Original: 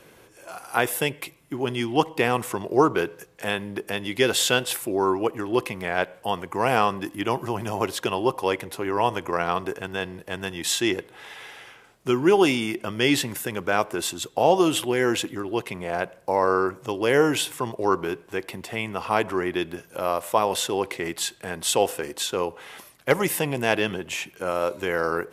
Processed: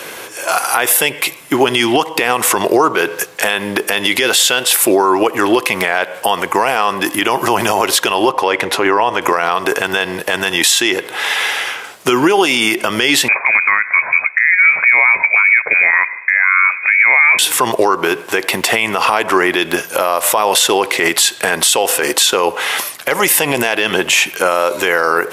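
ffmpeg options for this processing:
ffmpeg -i in.wav -filter_complex "[0:a]asettb=1/sr,asplit=3[link_01][link_02][link_03];[link_01]atrim=end=8.294[link_04];[link_02]atrim=start=8.29:end=9.22,asetpts=PTS-STARTPTS,afade=type=in:duration=0.004:curve=qsin,afade=type=out:start_time=0.926:duration=0.004:curve=qsin,aemphasis=mode=reproduction:type=50fm[link_05];[link_03]atrim=start=9.216[link_06];[link_04][link_05]acrossfade=duration=0.004:curve1=hsin:curve2=qsin[link_07];[link_07][link_06]acrossfade=duration=0.004:curve1=qsin:curve2=hsin,asettb=1/sr,asplit=3[link_08][link_09][link_10];[link_08]atrim=end=13.284[link_11];[link_09]atrim=start=13.28:end=17.39,asetpts=PTS-STARTPTS,afade=type=in:duration=0.004:curve=qsin,afade=type=out:start_time=4.106:duration=0.004:curve=qsin,lowpass=frequency=2200:width_type=q:width=0.5098,lowpass=frequency=2200:width_type=q:width=0.6013,lowpass=frequency=2200:width_type=q:width=0.9,lowpass=frequency=2200:width_type=q:width=2.563,afreqshift=-2600[link_12];[link_10]atrim=start=17.386[link_13];[link_11][link_12]acrossfade=duration=0.004:curve1=hsin:curve2=qsin[link_14];[link_14][link_13]acrossfade=duration=0.004:curve1=qsin:curve2=hsin,highpass=frequency=890:poles=1,acompressor=threshold=-30dB:ratio=6,alimiter=level_in=27dB:limit=-1dB:release=50:level=0:latency=1,volume=-1dB" out.wav

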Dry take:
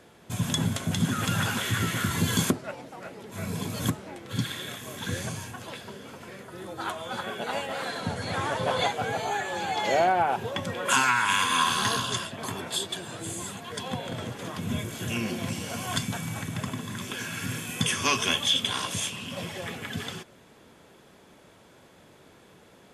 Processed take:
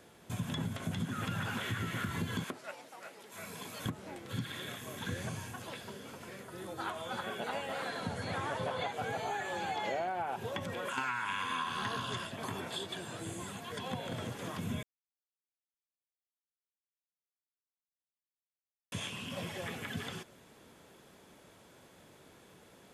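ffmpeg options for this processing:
ffmpeg -i in.wav -filter_complex "[0:a]asettb=1/sr,asplit=3[link_01][link_02][link_03];[link_01]atrim=end=2.444[link_04];[link_02]atrim=start=2.44:end=3.86,asetpts=PTS-STARTPTS,afade=type=in:duration=0.004:curve=qsin,afade=type=out:start_time=1.416:duration=0.004:curve=qsin,highpass=frequency=860:poles=1[link_05];[link_03]atrim=start=3.856[link_06];[link_04][link_05]acrossfade=duration=0.004:curve1=hsin:curve2=qsin[link_07];[link_07][link_06]acrossfade=duration=0.004:curve1=qsin:curve2=hsin,asettb=1/sr,asplit=3[link_08][link_09][link_10];[link_08]atrim=end=10.584[link_11];[link_09]atrim=start=10.58:end=10.98,asetpts=PTS-STARTPTS,afade=type=in:duration=0.004:curve=qsin,afade=type=out:start_time=0.396:duration=0.004:curve=qsin,acompressor=threshold=-29dB:ratio=6:attack=3.2:release=140:knee=1:detection=peak[link_12];[link_10]atrim=start=10.976[link_13];[link_11][link_12]acrossfade=duration=0.004:curve1=hsin:curve2=qsin[link_14];[link_14][link_13]acrossfade=duration=0.004:curve1=qsin:curve2=hsin,asplit=3[link_15][link_16][link_17];[link_15]atrim=end=14.83,asetpts=PTS-STARTPTS,afade=type=out:start_time=14.826:duration=0.004:curve=hsin[link_18];[link_16]atrim=start=14.83:end=18.92,asetpts=PTS-STARTPTS,volume=0[link_19];[link_17]atrim=start=18.92,asetpts=PTS-STARTPTS,afade=type=in:duration=0.004:curve=hsin[link_20];[link_18][link_19][link_20]concat=n=3:v=0:a=1,acrossover=split=3300[link_21][link_22];[link_22]acompressor=threshold=-47dB:ratio=4:attack=1:release=60[link_23];[link_21][link_23]amix=inputs=2:normalize=0,highshelf=frequency=7600:gain=5.5,acompressor=threshold=-28dB:ratio=6,volume=-4.5dB" out.wav

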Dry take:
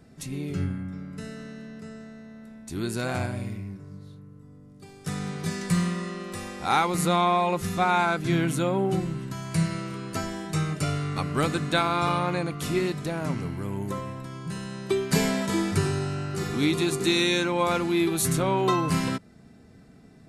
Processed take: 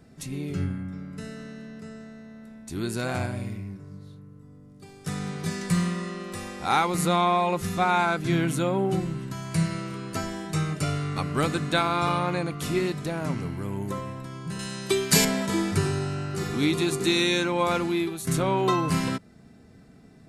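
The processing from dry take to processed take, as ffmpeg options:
ffmpeg -i in.wav -filter_complex "[0:a]asettb=1/sr,asplit=3[link_01][link_02][link_03];[link_01]atrim=end=14.594[link_04];[link_02]atrim=start=14.59:end=15.25,asetpts=PTS-STARTPTS,afade=type=in:duration=0.004:curve=qsin,afade=type=out:start_time=0.656:duration=0.004:curve=qsin,highshelf=frequency=2400:gain=11.5[link_05];[link_03]atrim=start=15.246[link_06];[link_04][link_05]acrossfade=duration=0.004:curve1=hsin:curve2=qsin[link_07];[link_07][link_06]acrossfade=duration=0.004:curve1=qsin:curve2=hsin,asplit=2[link_08][link_09];[link_08]atrim=end=18.27,asetpts=PTS-STARTPTS,afade=type=out:start_time=17.85:duration=0.42:silence=0.188365[link_10];[link_09]atrim=start=18.27,asetpts=PTS-STARTPTS,afade=type=in:duration=0.004:curve=hsin:silence=0.188365[link_11];[link_10][link_11]concat=n=2:v=0:a=1" out.wav

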